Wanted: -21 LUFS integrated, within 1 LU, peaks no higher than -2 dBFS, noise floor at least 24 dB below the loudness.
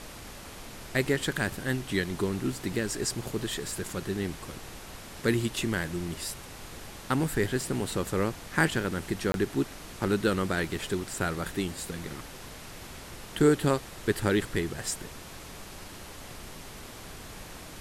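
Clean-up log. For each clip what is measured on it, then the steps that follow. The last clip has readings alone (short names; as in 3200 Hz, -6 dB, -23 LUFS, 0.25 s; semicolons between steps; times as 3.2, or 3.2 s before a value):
dropouts 1; longest dropout 22 ms; noise floor -45 dBFS; noise floor target -54 dBFS; loudness -30.0 LUFS; peak -9.5 dBFS; loudness target -21.0 LUFS
-> interpolate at 9.32, 22 ms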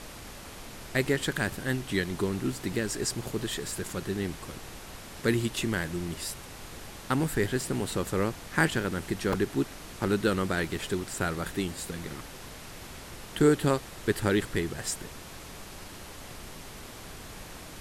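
dropouts 0; noise floor -45 dBFS; noise floor target -54 dBFS
-> noise print and reduce 9 dB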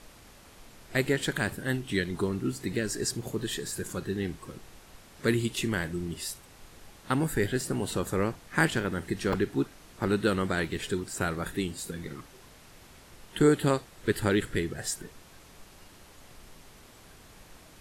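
noise floor -54 dBFS; loudness -30.0 LUFS; peak -10.0 dBFS; loudness target -21.0 LUFS
-> gain +9 dB; limiter -2 dBFS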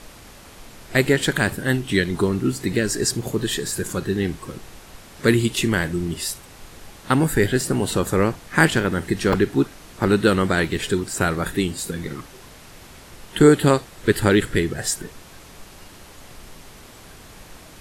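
loudness -21.0 LUFS; peak -2.0 dBFS; noise floor -45 dBFS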